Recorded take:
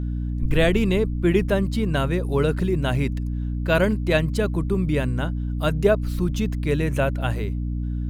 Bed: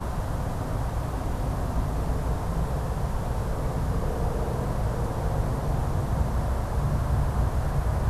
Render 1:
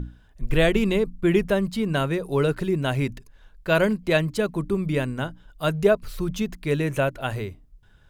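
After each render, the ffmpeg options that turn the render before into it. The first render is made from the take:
-af "bandreject=f=60:t=h:w=6,bandreject=f=120:t=h:w=6,bandreject=f=180:t=h:w=6,bandreject=f=240:t=h:w=6,bandreject=f=300:t=h:w=6"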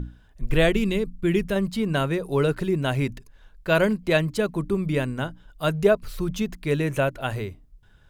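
-filter_complex "[0:a]asettb=1/sr,asplit=3[s0][s1][s2];[s0]atrim=end=0.734[s3];[s1]atrim=start=0.73:end=1.56,asetpts=PTS-STARTPTS,afade=t=in:d=0.004:c=qsin,afade=t=out:st=0.826:d=0.004:c=qsin,equalizer=f=810:t=o:w=1.9:g=-7.5[s4];[s2]atrim=start=1.556[s5];[s3][s4]acrossfade=d=0.004:c1=hsin:c2=qsin[s6];[s6][s5]acrossfade=d=0.004:c1=qsin:c2=hsin"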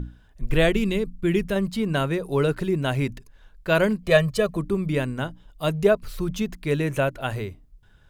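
-filter_complex "[0:a]asettb=1/sr,asplit=3[s0][s1][s2];[s0]atrim=end=4.064[s3];[s1]atrim=start=4.06:end=4.57,asetpts=PTS-STARTPTS,afade=t=in:d=0.004:c=qsin,afade=t=out:st=0.506:d=0.004:c=qsin,aecho=1:1:1.7:0.85,atrim=end_sample=22491[s4];[s2]atrim=start=4.566[s5];[s3][s4]acrossfade=d=0.004:c1=hsin:c2=qsin[s6];[s6][s5]acrossfade=d=0.004:c1=qsin:c2=hsin,asettb=1/sr,asplit=3[s7][s8][s9];[s7]atrim=end=5.274[s10];[s8]atrim=start=5.27:end=5.84,asetpts=PTS-STARTPTS,afade=t=in:d=0.004:c=qsin,afade=t=out:st=0.566:d=0.004:c=qsin,equalizer=f=1500:w=6.8:g=-10.5[s11];[s9]atrim=start=5.836[s12];[s10][s11]acrossfade=d=0.004:c1=hsin:c2=qsin[s13];[s13][s12]acrossfade=d=0.004:c1=qsin:c2=hsin"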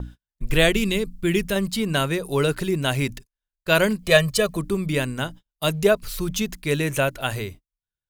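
-af "agate=range=0.01:threshold=0.0112:ratio=16:detection=peak,highshelf=f=2700:g=12"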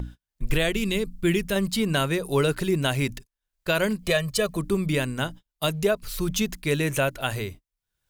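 -af "acompressor=mode=upward:threshold=0.0126:ratio=2.5,alimiter=limit=0.251:level=0:latency=1:release=334"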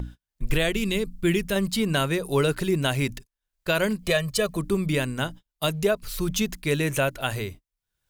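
-af anull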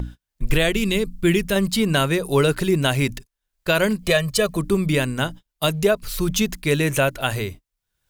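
-af "volume=1.68"

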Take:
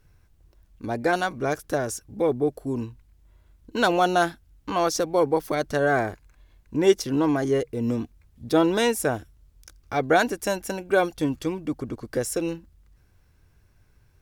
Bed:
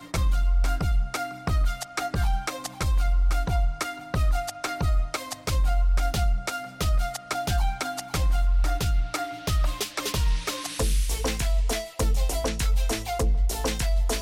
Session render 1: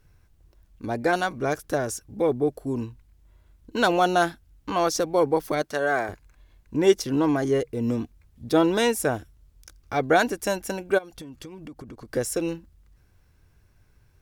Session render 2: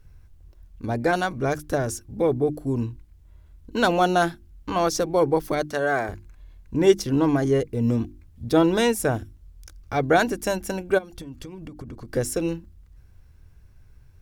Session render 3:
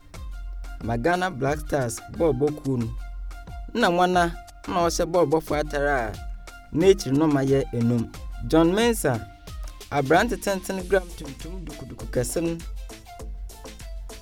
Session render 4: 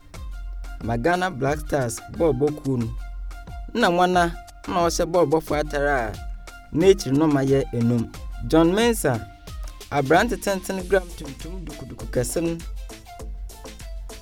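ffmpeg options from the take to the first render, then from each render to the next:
-filter_complex "[0:a]asettb=1/sr,asplit=3[s0][s1][s2];[s0]atrim=end=5.624[s3];[s1]atrim=start=5.62:end=6.09,asetpts=PTS-STARTPTS,afade=t=in:d=0.004:c=qsin,afade=t=out:st=0.466:d=0.004:c=qsin,highpass=f=510:p=1[s4];[s2]atrim=start=6.086[s5];[s3][s4]acrossfade=d=0.004:c1=hsin:c2=qsin[s6];[s6][s5]acrossfade=d=0.004:c1=qsin:c2=hsin,asplit=3[s7][s8][s9];[s7]afade=t=out:st=10.97:d=0.02[s10];[s8]acompressor=threshold=0.0158:ratio=20:attack=3.2:release=140:knee=1:detection=peak,afade=t=in:st=10.97:d=0.02,afade=t=out:st=12.11:d=0.02[s11];[s9]afade=t=in:st=12.11:d=0.02[s12];[s10][s11][s12]amix=inputs=3:normalize=0"
-af "lowshelf=f=150:g=11.5,bandreject=f=50:t=h:w=6,bandreject=f=100:t=h:w=6,bandreject=f=150:t=h:w=6,bandreject=f=200:t=h:w=6,bandreject=f=250:t=h:w=6,bandreject=f=300:t=h:w=6,bandreject=f=350:t=h:w=6"
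-filter_complex "[1:a]volume=0.211[s0];[0:a][s0]amix=inputs=2:normalize=0"
-af "volume=1.19"

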